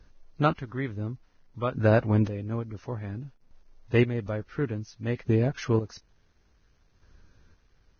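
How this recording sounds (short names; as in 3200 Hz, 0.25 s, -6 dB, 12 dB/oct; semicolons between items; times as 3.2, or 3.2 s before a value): chopped level 0.57 Hz, depth 65%, duty 30%; a quantiser's noise floor 12-bit, dither none; Vorbis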